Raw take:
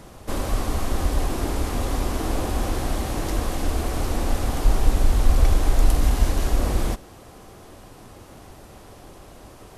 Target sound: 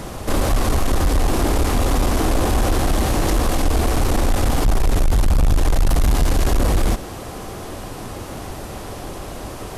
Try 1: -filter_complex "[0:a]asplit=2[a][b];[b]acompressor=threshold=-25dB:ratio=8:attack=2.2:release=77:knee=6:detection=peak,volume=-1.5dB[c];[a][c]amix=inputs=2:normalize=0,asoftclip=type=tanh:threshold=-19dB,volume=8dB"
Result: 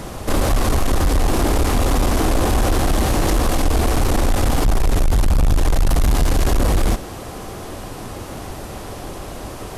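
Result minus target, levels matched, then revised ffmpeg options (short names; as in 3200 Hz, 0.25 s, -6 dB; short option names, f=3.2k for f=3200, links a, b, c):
compressor: peak gain reduction -7 dB
-filter_complex "[0:a]asplit=2[a][b];[b]acompressor=threshold=-33dB:ratio=8:attack=2.2:release=77:knee=6:detection=peak,volume=-1.5dB[c];[a][c]amix=inputs=2:normalize=0,asoftclip=type=tanh:threshold=-19dB,volume=8dB"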